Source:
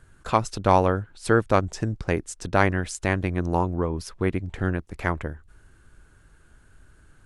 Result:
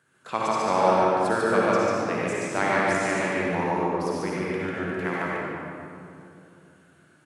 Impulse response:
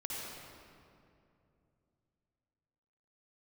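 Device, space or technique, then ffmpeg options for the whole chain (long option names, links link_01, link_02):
stadium PA: -filter_complex "[0:a]highpass=frequency=140:width=0.5412,highpass=frequency=140:width=1.3066,lowshelf=frequency=190:gain=-5,equalizer=frequency=2400:width_type=o:width=1.6:gain=3.5,aecho=1:1:145.8|177.8:0.794|0.282[link_01];[1:a]atrim=start_sample=2205[link_02];[link_01][link_02]afir=irnorm=-1:irlink=0,volume=-3.5dB"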